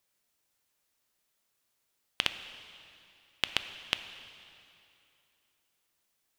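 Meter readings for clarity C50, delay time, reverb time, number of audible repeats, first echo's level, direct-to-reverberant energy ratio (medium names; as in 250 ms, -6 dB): 10.5 dB, no echo, 2.7 s, no echo, no echo, 9.5 dB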